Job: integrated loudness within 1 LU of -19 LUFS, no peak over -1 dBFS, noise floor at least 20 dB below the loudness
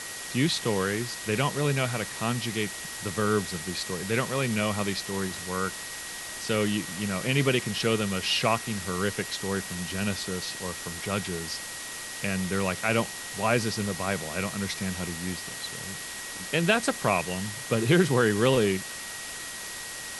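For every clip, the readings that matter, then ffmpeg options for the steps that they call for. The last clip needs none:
steady tone 1.9 kHz; tone level -42 dBFS; noise floor -38 dBFS; noise floor target -48 dBFS; loudness -28.0 LUFS; peak level -8.5 dBFS; loudness target -19.0 LUFS
-> -af "bandreject=f=1900:w=30"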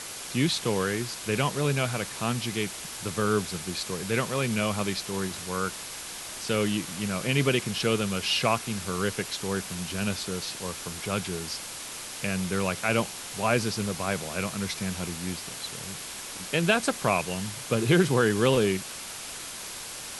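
steady tone not found; noise floor -39 dBFS; noise floor target -49 dBFS
-> -af "afftdn=nr=10:nf=-39"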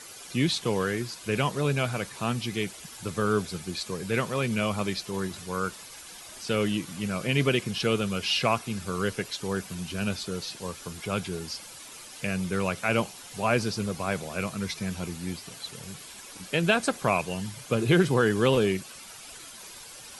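noise floor -45 dBFS; noise floor target -49 dBFS
-> -af "afftdn=nr=6:nf=-45"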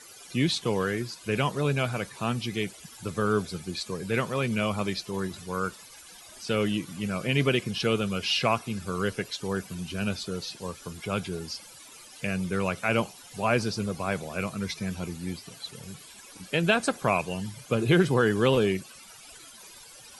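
noise floor -49 dBFS; loudness -28.5 LUFS; peak level -9.0 dBFS; loudness target -19.0 LUFS
-> -af "volume=2.99,alimiter=limit=0.891:level=0:latency=1"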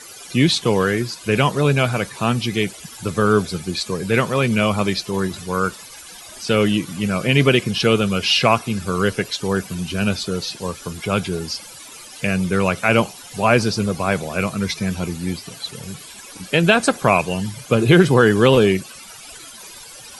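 loudness -19.0 LUFS; peak level -1.0 dBFS; noise floor -39 dBFS

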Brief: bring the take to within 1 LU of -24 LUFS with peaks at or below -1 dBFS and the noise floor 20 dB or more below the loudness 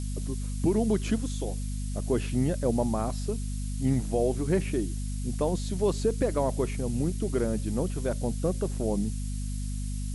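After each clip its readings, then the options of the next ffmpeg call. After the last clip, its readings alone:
hum 50 Hz; highest harmonic 250 Hz; hum level -30 dBFS; noise floor -32 dBFS; noise floor target -50 dBFS; loudness -29.5 LUFS; peak level -13.5 dBFS; loudness target -24.0 LUFS
-> -af "bandreject=f=50:t=h:w=4,bandreject=f=100:t=h:w=4,bandreject=f=150:t=h:w=4,bandreject=f=200:t=h:w=4,bandreject=f=250:t=h:w=4"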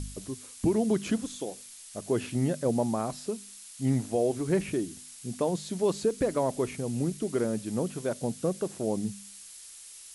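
hum not found; noise floor -48 dBFS; noise floor target -51 dBFS
-> -af "afftdn=nr=6:nf=-48"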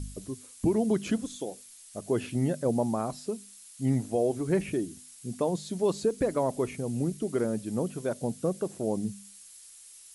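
noise floor -51 dBFS; loudness -30.5 LUFS; peak level -16.0 dBFS; loudness target -24.0 LUFS
-> -af "volume=2.11"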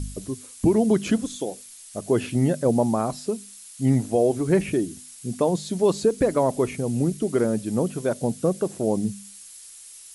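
loudness -24.0 LUFS; peak level -9.5 dBFS; noise floor -45 dBFS

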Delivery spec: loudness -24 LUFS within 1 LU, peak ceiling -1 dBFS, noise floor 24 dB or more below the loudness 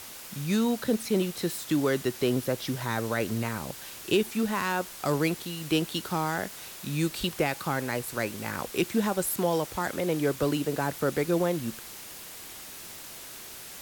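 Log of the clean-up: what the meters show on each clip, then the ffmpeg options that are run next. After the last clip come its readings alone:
noise floor -44 dBFS; noise floor target -53 dBFS; loudness -29.0 LUFS; peak level -12.5 dBFS; loudness target -24.0 LUFS
-> -af "afftdn=nr=9:nf=-44"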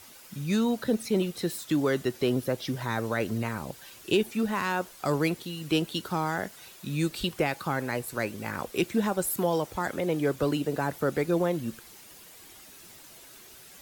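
noise floor -50 dBFS; noise floor target -53 dBFS
-> -af "afftdn=nr=6:nf=-50"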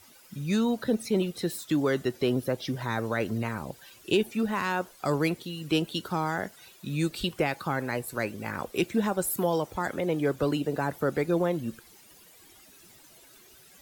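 noise floor -55 dBFS; loudness -29.0 LUFS; peak level -12.5 dBFS; loudness target -24.0 LUFS
-> -af "volume=1.78"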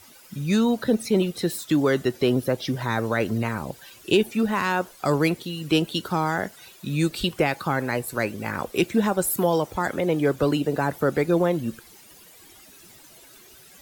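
loudness -24.0 LUFS; peak level -7.5 dBFS; noise floor -50 dBFS

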